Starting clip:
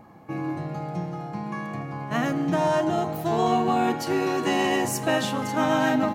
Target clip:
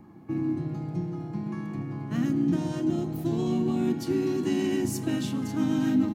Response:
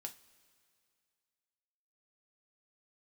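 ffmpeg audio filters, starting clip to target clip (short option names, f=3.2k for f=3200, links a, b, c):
-filter_complex "[0:a]acrossover=split=320|3000[a][b][c];[b]acompressor=threshold=-39dB:ratio=2[d];[a][d][c]amix=inputs=3:normalize=0,lowshelf=f=430:t=q:w=3:g=6,asplit=2[e][f];[1:a]atrim=start_sample=2205[g];[f][g]afir=irnorm=-1:irlink=0,volume=-11dB[h];[e][h]amix=inputs=2:normalize=0,asplit=2[i][j];[j]asetrate=35002,aresample=44100,atempo=1.25992,volume=-9dB[k];[i][k]amix=inputs=2:normalize=0,volume=-8dB"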